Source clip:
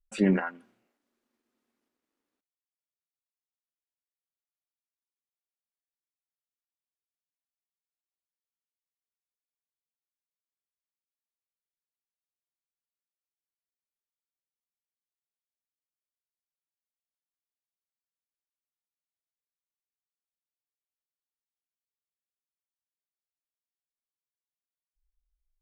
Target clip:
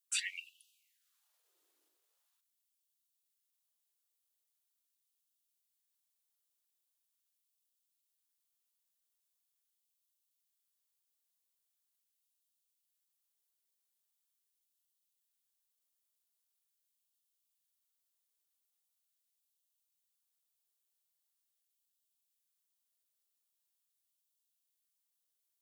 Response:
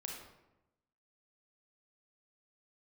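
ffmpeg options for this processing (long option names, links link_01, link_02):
-af "aexciter=amount=3:drive=4.2:freq=3000,afftfilt=real='re*gte(b*sr/1024,270*pow(2600/270,0.5+0.5*sin(2*PI*0.42*pts/sr)))':imag='im*gte(b*sr/1024,270*pow(2600/270,0.5+0.5*sin(2*PI*0.42*pts/sr)))':win_size=1024:overlap=0.75"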